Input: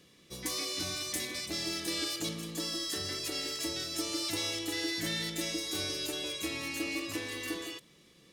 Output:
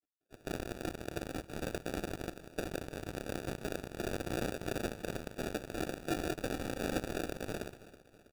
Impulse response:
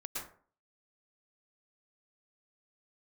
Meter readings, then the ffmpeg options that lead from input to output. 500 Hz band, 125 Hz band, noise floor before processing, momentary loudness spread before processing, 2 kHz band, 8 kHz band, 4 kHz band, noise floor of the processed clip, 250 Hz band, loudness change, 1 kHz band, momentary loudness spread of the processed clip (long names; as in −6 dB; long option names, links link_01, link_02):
+2.5 dB, +2.5 dB, −61 dBFS, 4 LU, −5.0 dB, −12.5 dB, −15.5 dB, −64 dBFS, −1.5 dB, −5.5 dB, +2.0 dB, 6 LU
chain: -filter_complex "[0:a]afftfilt=real='re*gte(hypot(re,im),0.00631)':imag='im*gte(hypot(re,im),0.00631)':win_size=1024:overlap=0.75,asplit=2[link_01][link_02];[link_02]alimiter=level_in=5dB:limit=-24dB:level=0:latency=1:release=105,volume=-5dB,volume=0.5dB[link_03];[link_01][link_03]amix=inputs=2:normalize=0,afftfilt=real='hypot(re,im)*cos(2*PI*random(0))':imag='hypot(re,im)*sin(2*PI*random(1))':win_size=512:overlap=0.75,aeval=exprs='val(0)*sin(2*PI*120*n/s)':channel_layout=same,asplit=3[link_04][link_05][link_06];[link_04]bandpass=frequency=730:width_type=q:width=8,volume=0dB[link_07];[link_05]bandpass=frequency=1090:width_type=q:width=8,volume=-6dB[link_08];[link_06]bandpass=frequency=2440:width_type=q:width=8,volume=-9dB[link_09];[link_07][link_08][link_09]amix=inputs=3:normalize=0,acrusher=samples=42:mix=1:aa=0.000001,aeval=exprs='0.00794*(cos(1*acos(clip(val(0)/0.00794,-1,1)))-cos(1*PI/2))+0.00282*(cos(5*acos(clip(val(0)/0.00794,-1,1)))-cos(5*PI/2))+0.00355*(cos(7*acos(clip(val(0)/0.00794,-1,1)))-cos(7*PI/2))':channel_layout=same,aecho=1:1:324|648|972|1296:0.133|0.0667|0.0333|0.0167,volume=16.5dB"